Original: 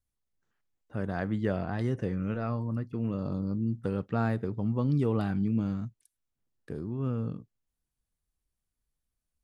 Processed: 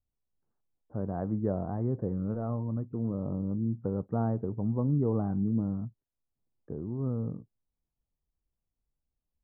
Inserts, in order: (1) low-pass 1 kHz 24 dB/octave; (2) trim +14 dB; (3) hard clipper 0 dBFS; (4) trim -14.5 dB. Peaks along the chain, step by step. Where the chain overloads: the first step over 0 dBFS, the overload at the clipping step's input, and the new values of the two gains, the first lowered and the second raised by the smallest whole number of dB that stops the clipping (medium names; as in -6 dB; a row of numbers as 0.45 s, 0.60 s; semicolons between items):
-16.5 dBFS, -2.5 dBFS, -2.5 dBFS, -17.0 dBFS; nothing clips